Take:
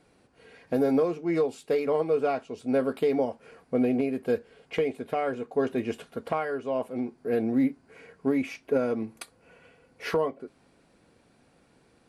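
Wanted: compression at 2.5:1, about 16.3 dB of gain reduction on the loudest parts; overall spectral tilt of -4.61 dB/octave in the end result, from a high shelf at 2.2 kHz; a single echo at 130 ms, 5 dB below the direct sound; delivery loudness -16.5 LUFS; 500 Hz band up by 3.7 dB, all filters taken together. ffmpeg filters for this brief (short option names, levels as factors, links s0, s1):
-af "equalizer=f=500:t=o:g=4,highshelf=f=2200:g=4.5,acompressor=threshold=0.00708:ratio=2.5,aecho=1:1:130:0.562,volume=14.1"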